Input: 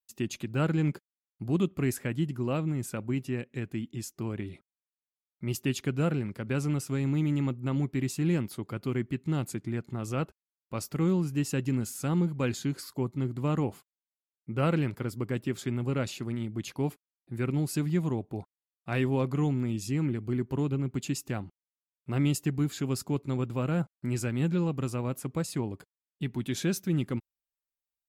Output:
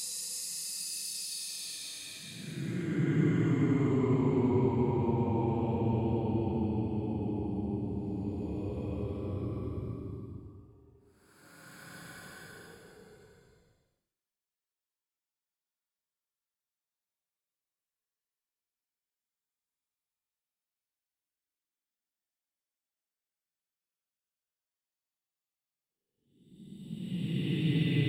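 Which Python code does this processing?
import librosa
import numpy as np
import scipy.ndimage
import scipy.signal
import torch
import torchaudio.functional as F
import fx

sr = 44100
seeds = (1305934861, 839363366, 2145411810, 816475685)

y = fx.wow_flutter(x, sr, seeds[0], rate_hz=2.1, depth_cents=26.0)
y = fx.paulstretch(y, sr, seeds[1], factor=37.0, window_s=0.05, from_s=25.48)
y = y * librosa.db_to_amplitude(1.0)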